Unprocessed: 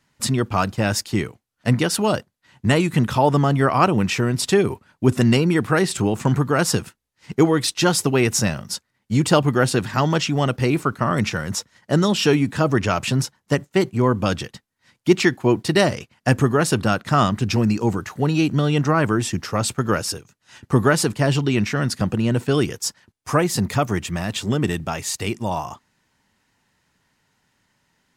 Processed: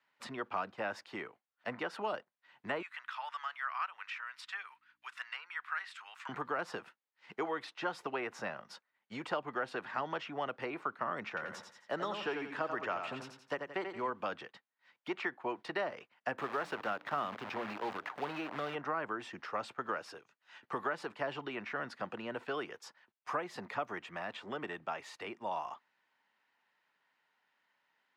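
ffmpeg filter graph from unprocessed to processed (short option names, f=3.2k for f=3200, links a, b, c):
-filter_complex "[0:a]asettb=1/sr,asplit=3[a][b][c];[a]atrim=end=2.824[d];[b]atrim=start=2.82:end=6.29,asetpts=PTS-STARTPTS,afade=t=in:d=0.004:c=qsin,afade=t=out:st=3.466:d=0.004:c=qsin,highpass=f=1.3k:w=0.5412,highpass=f=1.3k:w=1.3066,aeval=exprs='val(0)+0.000794*(sin(2*PI*60*n/s)+sin(2*PI*2*60*n/s)/2+sin(2*PI*3*60*n/s)/3+sin(2*PI*4*60*n/s)/4+sin(2*PI*5*60*n/s)/5)':c=same[e];[c]atrim=start=6.286[f];[d][e]acrossfade=d=0.004:c1=hsin:c2=qsin[g];[g][f]acrossfade=d=0.004:c1=qsin:c2=hsin,asettb=1/sr,asplit=3[h][i][j];[h]atrim=end=11.284[k];[i]atrim=start=11.28:end=14.1,asetpts=PTS-STARTPTS,afade=t=in:d=0.004:c=qsin,afade=t=out:st=2.816:d=0.004:c=qsin,highshelf=f=8.4k:g=5,aecho=1:1:87|174|261|348:0.422|0.139|0.0459|0.0152,atrim=end_sample=124362[l];[j]atrim=start=14.096[m];[k][l]acrossfade=d=0.004:c1=hsin:c2=qsin[n];[n][m]acrossfade=d=0.004:c1=qsin:c2=hsin,asettb=1/sr,asplit=3[o][p][q];[o]atrim=end=16.384[r];[p]atrim=start=16.38:end=18.75,asetpts=PTS-STARTPTS,afade=t=in:d=0.004:c=qsin,afade=t=out:st=2.366:d=0.004:c=qsin,bandreject=f=60:t=h:w=6,bandreject=f=120:t=h:w=6,bandreject=f=180:t=h:w=6,bandreject=f=240:t=h:w=6,bandreject=f=300:t=h:w=6,acompressor=mode=upward:threshold=-20dB:ratio=2.5:attack=3.2:release=140:knee=2.83:detection=peak,acrusher=bits=5:dc=4:mix=0:aa=0.000001[s];[q]atrim=start=18.746[t];[r][s]acrossfade=d=0.004:c1=hsin:c2=qsin[u];[u][t]acrossfade=d=0.004:c1=qsin:c2=hsin,highpass=270,acrossover=split=580 3700:gain=0.251 1 0.0708[v][w][x];[v][w][x]amix=inputs=3:normalize=0,acrossover=split=450|1800[y][z][aa];[y]acompressor=threshold=-36dB:ratio=4[ab];[z]acompressor=threshold=-28dB:ratio=4[ac];[aa]acompressor=threshold=-44dB:ratio=4[ad];[ab][ac][ad]amix=inputs=3:normalize=0,volume=-7dB"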